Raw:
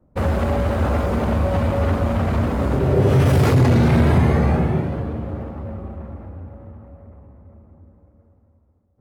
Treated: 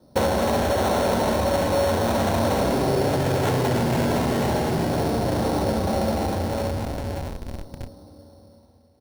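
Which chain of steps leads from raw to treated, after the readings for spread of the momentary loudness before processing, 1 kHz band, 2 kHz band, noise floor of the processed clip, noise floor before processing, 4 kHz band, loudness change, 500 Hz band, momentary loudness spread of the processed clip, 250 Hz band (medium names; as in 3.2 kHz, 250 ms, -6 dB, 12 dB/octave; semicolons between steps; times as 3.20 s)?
18 LU, +2.5 dB, -0.5 dB, -54 dBFS, -59 dBFS, +6.0 dB, -4.0 dB, +1.0 dB, 10 LU, -3.0 dB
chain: high-pass 270 Hz 6 dB/octave; on a send: feedback delay 68 ms, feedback 17%, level -5 dB; on the sum: compression 10:1, threshold -34 dBFS, peak gain reduction 20 dB; delay 308 ms -7.5 dB; in parallel at -3 dB: Schmitt trigger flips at -44 dBFS; on the sum: doubling 31 ms -12 dB; sample-and-hold 9×; dynamic bell 800 Hz, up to +5 dB, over -47 dBFS, Q 0.76; band-stop 1.2 kHz, Q 6.7; trim +9 dB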